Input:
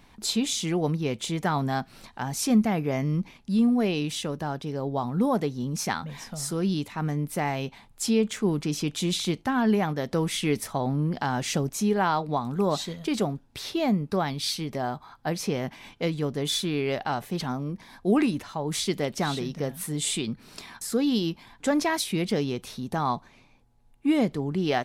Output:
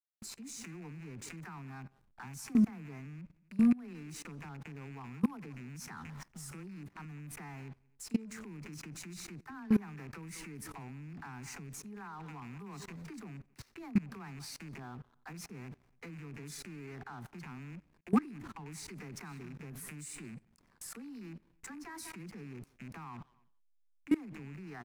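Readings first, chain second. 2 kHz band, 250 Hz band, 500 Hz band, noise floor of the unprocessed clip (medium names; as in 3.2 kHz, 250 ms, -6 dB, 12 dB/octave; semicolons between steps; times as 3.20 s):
-14.5 dB, -10.0 dB, -21.5 dB, -56 dBFS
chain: rattle on loud lows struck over -34 dBFS, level -24 dBFS; static phaser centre 1.4 kHz, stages 4; phase dispersion lows, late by 44 ms, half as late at 410 Hz; speakerphone echo 190 ms, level -17 dB; hysteresis with a dead band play -38.5 dBFS; on a send: feedback delay 90 ms, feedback 44%, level -24 dB; on the sum: level held to a coarse grid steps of 23 dB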